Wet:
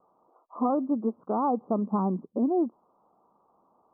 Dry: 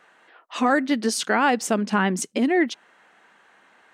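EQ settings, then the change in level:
Butterworth low-pass 1,200 Hz 96 dB per octave
low-shelf EQ 110 Hz +9 dB
−5.5 dB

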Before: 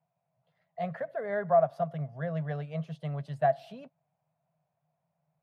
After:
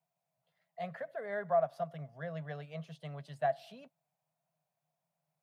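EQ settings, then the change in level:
high-pass filter 150 Hz
high-shelf EQ 2,100 Hz +9 dB
−7.0 dB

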